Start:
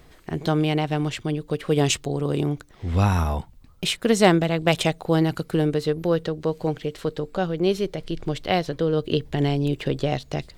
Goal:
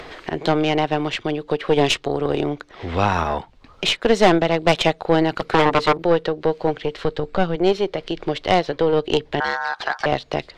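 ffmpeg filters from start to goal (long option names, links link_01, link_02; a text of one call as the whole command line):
ffmpeg -i in.wav -filter_complex "[0:a]lowpass=11000,asplit=3[link_01][link_02][link_03];[link_01]afade=type=out:start_time=5.39:duration=0.02[link_04];[link_02]aeval=exprs='0.335*(cos(1*acos(clip(val(0)/0.335,-1,1)))-cos(1*PI/2))+0.133*(cos(7*acos(clip(val(0)/0.335,-1,1)))-cos(7*PI/2))':channel_layout=same,afade=type=in:start_time=5.39:duration=0.02,afade=type=out:start_time=5.97:duration=0.02[link_05];[link_03]afade=type=in:start_time=5.97:duration=0.02[link_06];[link_04][link_05][link_06]amix=inputs=3:normalize=0,acrossover=split=320 4900:gain=0.178 1 0.0891[link_07][link_08][link_09];[link_07][link_08][link_09]amix=inputs=3:normalize=0,asplit=2[link_10][link_11];[link_11]acompressor=mode=upward:threshold=-24dB:ratio=2.5,volume=-1.5dB[link_12];[link_10][link_12]amix=inputs=2:normalize=0,aeval=exprs='(tanh(3.55*val(0)+0.6)-tanh(0.6))/3.55':channel_layout=same,asettb=1/sr,asplit=3[link_13][link_14][link_15];[link_13]atrim=end=6.564[link_16];[link_14]atrim=start=6.56:end=7.56,asetpts=PTS-STARTPTS,afade=type=in:duration=0.004:curve=qsin,afade=type=out:start_time=0.996:duration=0.004:curve=qsin,asubboost=boost=9:cutoff=190[link_17];[link_15]atrim=start=7.556[link_18];[link_16][link_17]acrossfade=duration=0.004:curve1=hsin:curve2=qsin[link_19];[link_19][link_18]acrossfade=duration=0.004:curve1=qsin:curve2=hsin,asettb=1/sr,asplit=3[link_20][link_21][link_22];[link_20]atrim=end=9.404[link_23];[link_21]atrim=start=9.4:end=10.06,asetpts=PTS-STARTPTS,afade=type=in:duration=0.004:curve=qsin,afade=type=out:start_time=0.656:duration=0.004:curve=qsin,aeval=exprs='val(0)*sin(2*PI*1200*n/s)':channel_layout=same[link_24];[link_22]atrim=start=10.056[link_25];[link_23][link_24]acrossfade=duration=0.004:curve1=hsin:curve2=qsin[link_26];[link_26][link_25]acrossfade=duration=0.004:curve1=qsin:curve2=hsin,volume=4.5dB" out.wav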